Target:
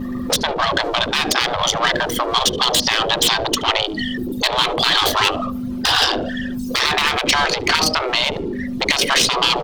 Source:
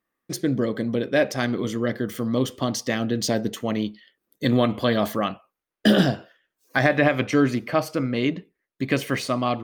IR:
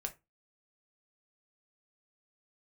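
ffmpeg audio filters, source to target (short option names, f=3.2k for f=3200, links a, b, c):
-filter_complex "[0:a]aeval=exprs='val(0)+0.5*0.0282*sgn(val(0))':c=same,anlmdn=158,aeval=exprs='val(0)+0.0178*(sin(2*PI*50*n/s)+sin(2*PI*2*50*n/s)/2+sin(2*PI*3*50*n/s)/3+sin(2*PI*4*50*n/s)/4+sin(2*PI*5*50*n/s)/5)':c=same,tiltshelf=f=820:g=5.5,asoftclip=type=tanh:threshold=-7.5dB,asplit=2[a][b];[b]adelay=73,lowpass=f=1.2k:p=1,volume=-21dB,asplit=2[c][d];[d]adelay=73,lowpass=f=1.2k:p=1,volume=0.25[e];[a][c][e]amix=inputs=3:normalize=0,acompressor=threshold=-20dB:ratio=4,highshelf=f=2.7k:t=q:w=1.5:g=10,afftfilt=real='re*lt(hypot(re,im),0.0708)':imag='im*lt(hypot(re,im),0.0708)':win_size=1024:overlap=0.75,acrossover=split=130|350|860|5500[f][g][h][i][j];[f]acompressor=threshold=-59dB:ratio=4[k];[g]acompressor=threshold=-55dB:ratio=4[l];[h]acompressor=threshold=-55dB:ratio=4[m];[i]acompressor=threshold=-39dB:ratio=4[n];[j]acompressor=threshold=-55dB:ratio=4[o];[k][l][m][n][o]amix=inputs=5:normalize=0,alimiter=level_in=30dB:limit=-1dB:release=50:level=0:latency=1,volume=-2.5dB"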